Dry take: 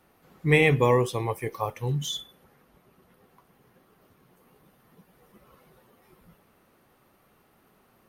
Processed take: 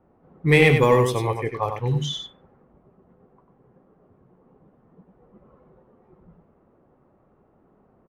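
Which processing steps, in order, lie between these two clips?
level-controlled noise filter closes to 750 Hz, open at -21.5 dBFS; in parallel at -7 dB: hard clipper -17 dBFS, distortion -11 dB; 1.22–1.88 s: on the sum: crackle 12 per s -35 dBFS; delay 95 ms -7 dB; trim +1 dB

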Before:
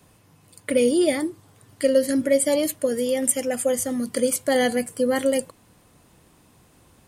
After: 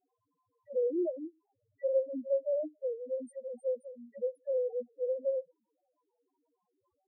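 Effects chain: three-band isolator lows -16 dB, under 340 Hz, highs -16 dB, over 2.3 kHz; touch-sensitive flanger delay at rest 11.1 ms, full sweep at -20.5 dBFS; in parallel at -8 dB: sample-and-hold 11×; on the sum: loudest bins only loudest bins 1; trim -4.5 dB

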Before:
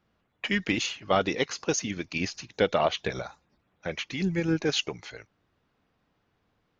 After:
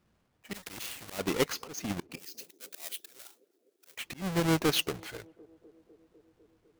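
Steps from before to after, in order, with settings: square wave that keeps the level; slow attack 273 ms; 2.18–3.97 s: differentiator; on a send: band-passed feedback delay 251 ms, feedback 79%, band-pass 410 Hz, level -23.5 dB; 0.54–1.19 s: on the sum: spectrum-flattening compressor 2:1; trim -4 dB

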